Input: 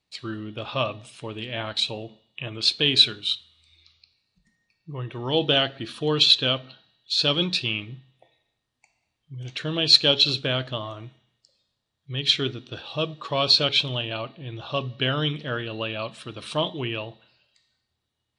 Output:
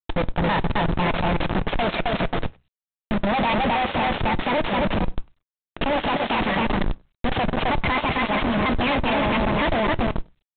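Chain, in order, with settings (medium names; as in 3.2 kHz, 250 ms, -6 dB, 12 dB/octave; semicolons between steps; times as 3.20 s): gliding tape speed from 153% -> 195%; treble shelf 3 kHz +3.5 dB; static phaser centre 1.3 kHz, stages 6; feedback delay 263 ms, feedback 24%, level -4 dB; Schmitt trigger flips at -33 dBFS; speakerphone echo 100 ms, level -25 dB; on a send at -17.5 dB: reverberation RT60 0.20 s, pre-delay 3 ms; on the sum: trim +9 dB; G.726 24 kbps 8 kHz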